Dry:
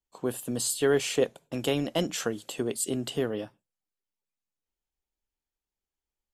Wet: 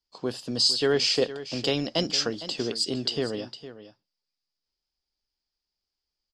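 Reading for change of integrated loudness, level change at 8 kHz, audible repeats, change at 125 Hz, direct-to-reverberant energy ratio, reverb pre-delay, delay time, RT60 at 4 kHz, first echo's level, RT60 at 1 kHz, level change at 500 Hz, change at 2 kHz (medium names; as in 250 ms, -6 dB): +3.5 dB, -2.5 dB, 1, 0.0 dB, no reverb, no reverb, 458 ms, no reverb, -14.0 dB, no reverb, +0.5 dB, +2.0 dB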